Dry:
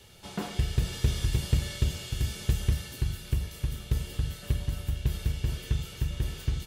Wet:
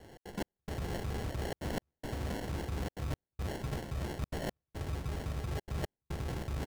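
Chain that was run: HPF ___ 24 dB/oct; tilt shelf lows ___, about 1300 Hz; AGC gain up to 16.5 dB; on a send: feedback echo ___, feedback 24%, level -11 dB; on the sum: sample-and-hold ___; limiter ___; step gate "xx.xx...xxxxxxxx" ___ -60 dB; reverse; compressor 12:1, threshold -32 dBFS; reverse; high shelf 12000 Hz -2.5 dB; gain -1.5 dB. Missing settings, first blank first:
61 Hz, -4 dB, 0.306 s, 36×, -13 dBFS, 177 bpm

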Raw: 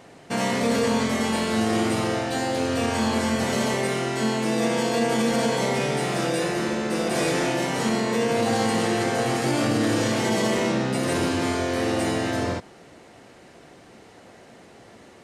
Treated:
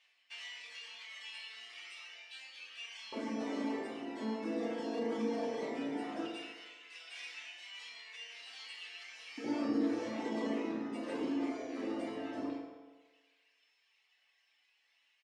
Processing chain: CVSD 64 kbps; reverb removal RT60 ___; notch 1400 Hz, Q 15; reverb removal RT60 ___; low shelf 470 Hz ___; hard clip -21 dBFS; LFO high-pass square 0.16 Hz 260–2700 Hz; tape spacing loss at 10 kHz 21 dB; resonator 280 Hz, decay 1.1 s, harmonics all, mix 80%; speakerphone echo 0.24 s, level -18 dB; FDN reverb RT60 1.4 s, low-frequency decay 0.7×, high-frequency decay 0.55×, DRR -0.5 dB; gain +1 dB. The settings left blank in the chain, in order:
0.97 s, 1.1 s, -5 dB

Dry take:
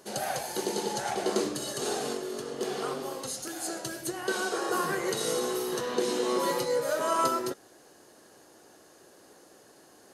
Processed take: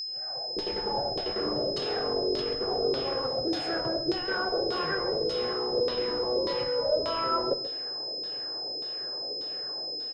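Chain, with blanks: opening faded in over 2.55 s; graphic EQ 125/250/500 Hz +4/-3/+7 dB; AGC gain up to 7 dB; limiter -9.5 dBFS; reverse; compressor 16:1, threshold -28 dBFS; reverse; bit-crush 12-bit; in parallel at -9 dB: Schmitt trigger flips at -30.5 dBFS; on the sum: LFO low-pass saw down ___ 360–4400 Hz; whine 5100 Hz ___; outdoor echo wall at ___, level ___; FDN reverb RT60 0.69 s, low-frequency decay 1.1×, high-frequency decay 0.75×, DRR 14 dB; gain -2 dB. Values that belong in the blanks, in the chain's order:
1.7 Hz, -30 dBFS, 23 m, -14 dB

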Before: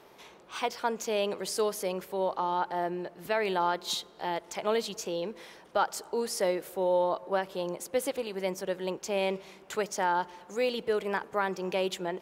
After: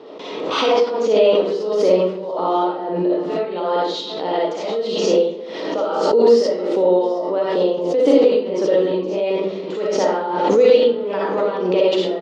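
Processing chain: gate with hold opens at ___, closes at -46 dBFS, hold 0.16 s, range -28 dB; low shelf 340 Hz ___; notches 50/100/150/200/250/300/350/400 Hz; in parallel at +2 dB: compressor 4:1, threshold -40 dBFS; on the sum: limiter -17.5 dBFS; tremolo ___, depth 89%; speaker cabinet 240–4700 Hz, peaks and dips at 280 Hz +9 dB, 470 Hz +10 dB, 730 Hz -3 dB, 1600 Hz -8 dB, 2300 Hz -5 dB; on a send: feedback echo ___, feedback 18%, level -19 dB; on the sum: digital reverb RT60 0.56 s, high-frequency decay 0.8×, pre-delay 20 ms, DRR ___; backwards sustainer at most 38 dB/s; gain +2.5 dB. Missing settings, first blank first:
-43 dBFS, +10.5 dB, 1.6 Hz, 0.734 s, -7.5 dB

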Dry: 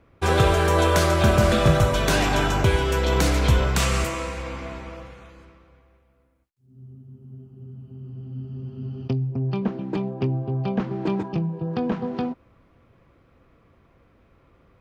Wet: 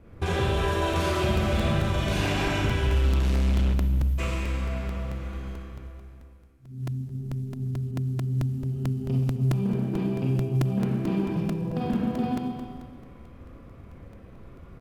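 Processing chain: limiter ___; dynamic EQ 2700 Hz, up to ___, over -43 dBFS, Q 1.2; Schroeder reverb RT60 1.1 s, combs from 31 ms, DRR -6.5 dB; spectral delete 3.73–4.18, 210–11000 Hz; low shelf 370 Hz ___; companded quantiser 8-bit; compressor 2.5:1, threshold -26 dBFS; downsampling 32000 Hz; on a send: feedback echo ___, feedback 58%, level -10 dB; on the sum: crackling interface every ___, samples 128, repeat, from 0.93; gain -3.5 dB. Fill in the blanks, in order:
-11.5 dBFS, +7 dB, +11 dB, 0.133 s, 0.22 s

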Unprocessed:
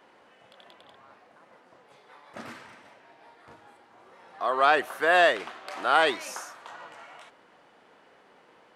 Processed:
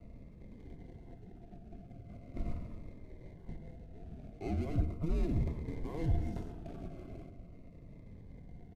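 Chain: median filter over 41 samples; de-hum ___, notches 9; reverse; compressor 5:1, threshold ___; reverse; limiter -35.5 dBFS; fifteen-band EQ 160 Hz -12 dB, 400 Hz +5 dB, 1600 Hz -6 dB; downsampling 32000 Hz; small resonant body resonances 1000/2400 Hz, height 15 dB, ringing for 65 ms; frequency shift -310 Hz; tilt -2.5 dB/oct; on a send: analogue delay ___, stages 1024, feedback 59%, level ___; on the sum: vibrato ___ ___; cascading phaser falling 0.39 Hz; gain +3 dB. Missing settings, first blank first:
77.14 Hz, -42 dBFS, 0.109 s, -13 dB, 0.82 Hz, 14 cents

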